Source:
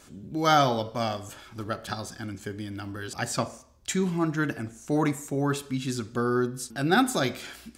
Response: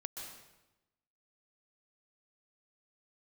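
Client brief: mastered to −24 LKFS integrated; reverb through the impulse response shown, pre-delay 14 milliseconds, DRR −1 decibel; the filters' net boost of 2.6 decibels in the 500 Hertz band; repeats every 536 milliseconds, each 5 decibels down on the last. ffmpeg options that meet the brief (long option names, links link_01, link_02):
-filter_complex "[0:a]equalizer=frequency=500:width_type=o:gain=3.5,aecho=1:1:536|1072|1608|2144|2680|3216|3752:0.562|0.315|0.176|0.0988|0.0553|0.031|0.0173,asplit=2[link_01][link_02];[1:a]atrim=start_sample=2205,adelay=14[link_03];[link_02][link_03]afir=irnorm=-1:irlink=0,volume=2.5dB[link_04];[link_01][link_04]amix=inputs=2:normalize=0,volume=-1.5dB"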